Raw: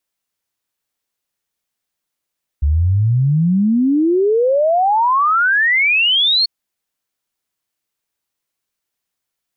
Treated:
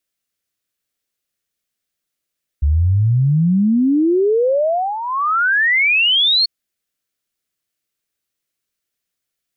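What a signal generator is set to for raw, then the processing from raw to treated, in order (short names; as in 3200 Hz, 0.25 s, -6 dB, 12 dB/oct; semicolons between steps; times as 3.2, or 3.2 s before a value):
log sweep 69 Hz -> 4400 Hz 3.84 s -11 dBFS
bell 910 Hz -10.5 dB 0.53 oct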